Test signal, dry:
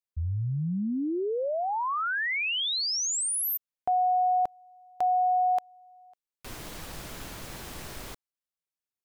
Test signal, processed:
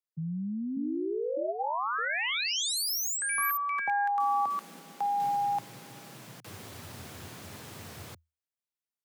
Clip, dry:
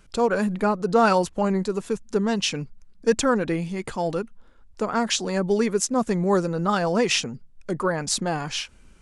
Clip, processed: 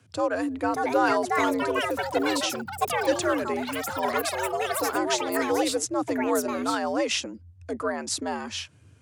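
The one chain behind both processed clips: frequency shift +80 Hz; ever faster or slower copies 641 ms, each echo +6 st, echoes 3; trim -4.5 dB

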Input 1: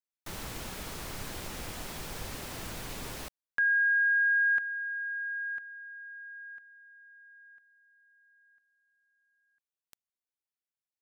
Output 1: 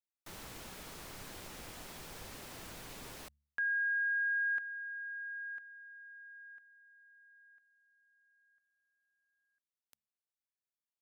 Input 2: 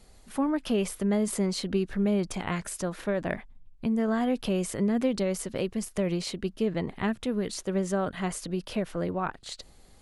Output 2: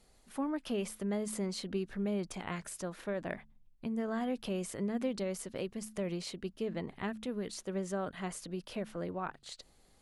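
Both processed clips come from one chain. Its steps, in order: bass shelf 120 Hz -5 dB; de-hum 72.07 Hz, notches 3; trim -7.5 dB

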